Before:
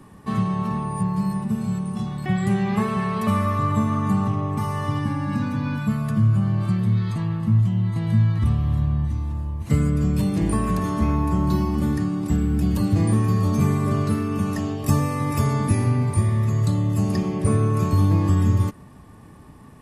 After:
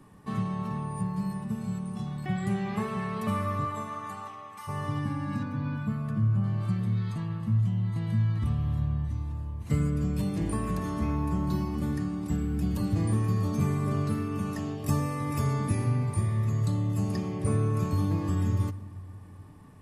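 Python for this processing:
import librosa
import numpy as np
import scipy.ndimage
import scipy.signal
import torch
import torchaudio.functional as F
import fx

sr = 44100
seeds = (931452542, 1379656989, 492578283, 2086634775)

y = fx.highpass(x, sr, hz=fx.line((3.64, 350.0), (4.67, 1300.0)), slope=12, at=(3.64, 4.67), fade=0.02)
y = fx.high_shelf(y, sr, hz=3200.0, db=-10.5, at=(5.43, 6.44))
y = fx.room_shoebox(y, sr, seeds[0], volume_m3=3000.0, walls='mixed', distance_m=0.41)
y = y * librosa.db_to_amplitude(-7.5)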